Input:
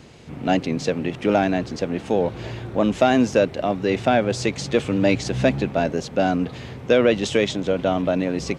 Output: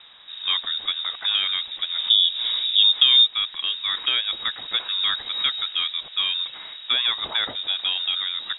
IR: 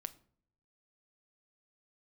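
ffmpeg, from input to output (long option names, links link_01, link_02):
-af "asetnsamples=nb_out_samples=441:pad=0,asendcmd='1.98 equalizer g 12;3.26 equalizer g -5',equalizer=frequency=290:width_type=o:width=2.8:gain=-3.5,acompressor=threshold=-19dB:ratio=2,lowpass=frequency=3300:width_type=q:width=0.5098,lowpass=frequency=3300:width_type=q:width=0.6013,lowpass=frequency=3300:width_type=q:width=0.9,lowpass=frequency=3300:width_type=q:width=2.563,afreqshift=-3900"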